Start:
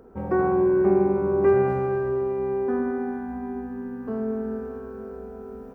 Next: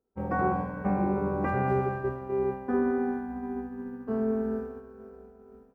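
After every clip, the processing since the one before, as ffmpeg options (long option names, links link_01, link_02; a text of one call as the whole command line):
ffmpeg -i in.wav -af "afftfilt=real='re*lt(hypot(re,im),0.708)':imag='im*lt(hypot(re,im),0.708)':win_size=1024:overlap=0.75,agate=range=-33dB:threshold=-28dB:ratio=3:detection=peak" out.wav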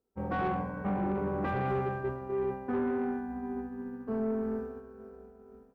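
ffmpeg -i in.wav -af "asoftclip=type=tanh:threshold=-23.5dB,volume=-1.5dB" out.wav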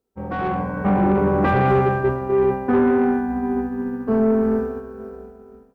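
ffmpeg -i in.wav -af "dynaudnorm=framelen=190:gausssize=7:maxgain=9.5dB,volume=4.5dB" out.wav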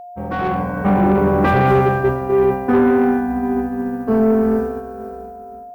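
ffmpeg -i in.wav -af "crystalizer=i=1.5:c=0,aeval=exprs='val(0)+0.0158*sin(2*PI*710*n/s)':channel_layout=same,volume=3dB" out.wav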